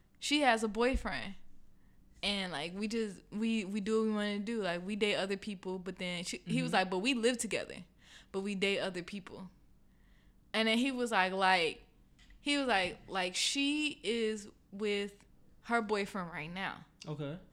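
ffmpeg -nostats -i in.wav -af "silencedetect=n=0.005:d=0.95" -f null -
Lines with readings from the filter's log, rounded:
silence_start: 9.47
silence_end: 10.54 | silence_duration: 1.07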